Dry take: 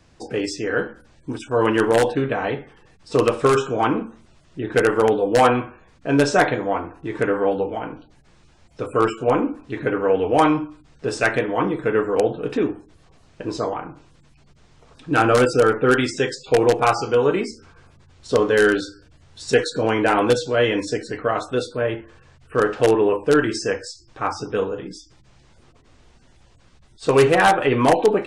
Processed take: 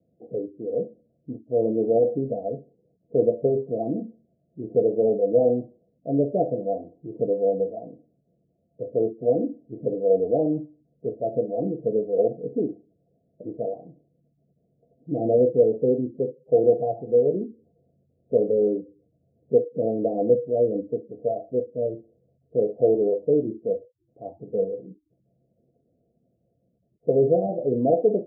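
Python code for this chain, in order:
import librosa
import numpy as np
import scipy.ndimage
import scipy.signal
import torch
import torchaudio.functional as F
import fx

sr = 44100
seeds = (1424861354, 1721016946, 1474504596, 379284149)

y = scipy.signal.sosfilt(scipy.signal.butter(2, 150.0, 'highpass', fs=sr, output='sos'), x)
y = fx.noise_reduce_blind(y, sr, reduce_db=6)
y = scipy.signal.sosfilt(scipy.signal.cheby1(6, 6, 700.0, 'lowpass', fs=sr, output='sos'), y)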